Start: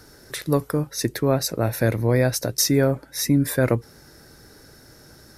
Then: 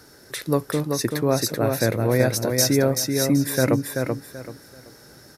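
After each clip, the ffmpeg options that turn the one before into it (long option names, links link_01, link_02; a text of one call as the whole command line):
ffmpeg -i in.wav -filter_complex "[0:a]highpass=frequency=120:poles=1,asplit=2[link_01][link_02];[link_02]aecho=0:1:383|766|1149|1532:0.596|0.155|0.0403|0.0105[link_03];[link_01][link_03]amix=inputs=2:normalize=0" out.wav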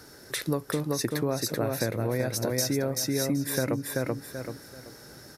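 ffmpeg -i in.wav -af "acompressor=threshold=-24dB:ratio=6" out.wav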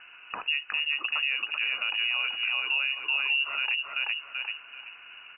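ffmpeg -i in.wav -af "lowpass=frequency=2600:width_type=q:width=0.5098,lowpass=frequency=2600:width_type=q:width=0.6013,lowpass=frequency=2600:width_type=q:width=0.9,lowpass=frequency=2600:width_type=q:width=2.563,afreqshift=-3000,alimiter=limit=-20.5dB:level=0:latency=1:release=66,volume=2dB" out.wav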